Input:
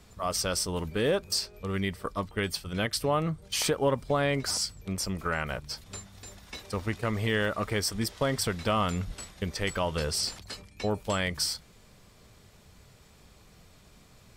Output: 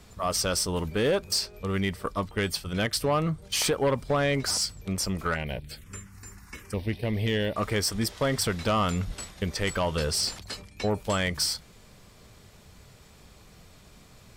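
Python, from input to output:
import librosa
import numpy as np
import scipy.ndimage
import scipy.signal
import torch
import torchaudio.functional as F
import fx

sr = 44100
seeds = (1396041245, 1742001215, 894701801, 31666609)

y = fx.env_phaser(x, sr, low_hz=480.0, high_hz=1300.0, full_db=-30.5, at=(5.34, 7.56))
y = fx.fold_sine(y, sr, drive_db=4, ceiling_db=-14.0)
y = F.gain(torch.from_numpy(y), -4.5).numpy()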